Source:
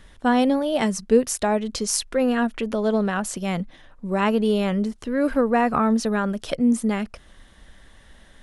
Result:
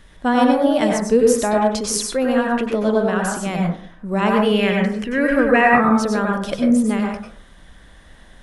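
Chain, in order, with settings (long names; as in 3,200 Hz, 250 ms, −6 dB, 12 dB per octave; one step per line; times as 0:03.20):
0:04.42–0:05.71: flat-topped bell 2,200 Hz +10.5 dB 1.1 octaves
dense smooth reverb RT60 0.5 s, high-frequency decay 0.35×, pre-delay 85 ms, DRR −0.5 dB
level +1 dB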